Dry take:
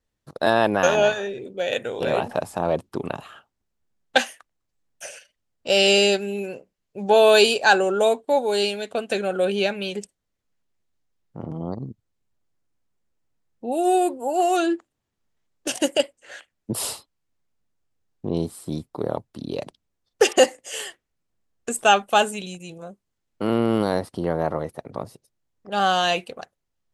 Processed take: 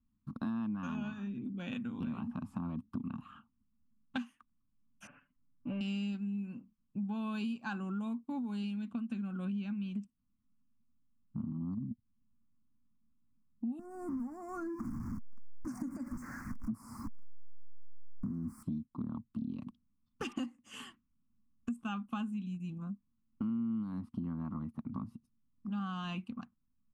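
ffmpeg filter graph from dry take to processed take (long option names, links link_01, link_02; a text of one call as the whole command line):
ffmpeg -i in.wav -filter_complex "[0:a]asettb=1/sr,asplit=3[link_01][link_02][link_03];[link_01]atrim=end=5.074[link_04];[link_02]atrim=start=5.07:end=5.81,asetpts=PTS-STARTPTS,afade=type=in:duration=0.004:curve=qsin,afade=type=out:start_time=0.736:duration=0.004:curve=qsin,lowpass=frequency=1800:width=0.5412,lowpass=frequency=1800:width=1.3066,aecho=1:1:6.9:0.89,atrim=end_sample=32634[link_05];[link_03]atrim=start=5.806[link_06];[link_04][link_05]acrossfade=duration=0.004:curve1=hsin:curve2=qsin[link_07];[link_07][link_06]acrossfade=duration=0.004:curve1=qsin:curve2=hsin,asettb=1/sr,asplit=3[link_08][link_09][link_10];[link_08]atrim=end=13.794[link_11];[link_09]atrim=start=13.79:end=18.63,asetpts=PTS-STARTPTS,afade=type=in:duration=0.004:curve=qsin,afade=type=out:start_time=4.836:duration=0.004:curve=qsin,aeval=exprs='val(0)+0.5*0.0398*sgn(val(0))':channel_layout=same,acompressor=threshold=-25dB:ratio=3:attack=3.2:release=140:knee=1:detection=peak,asuperstop=centerf=3200:order=8:qfactor=1.1[link_12];[link_10]atrim=start=18.626[link_13];[link_11][link_12]acrossfade=duration=0.004:curve1=hsin:curve2=qsin[link_14];[link_14][link_13]acrossfade=duration=0.004:curve1=qsin:curve2=hsin,firequalizer=gain_entry='entry(160,0);entry(230,12);entry(400,-25);entry(580,-29);entry(1100,-4);entry(1800,-21);entry(2600,-14);entry(3900,-23);entry(8300,-27)':delay=0.05:min_phase=1,acompressor=threshold=-38dB:ratio=5,highshelf=frequency=6400:gain=4,volume=1.5dB" out.wav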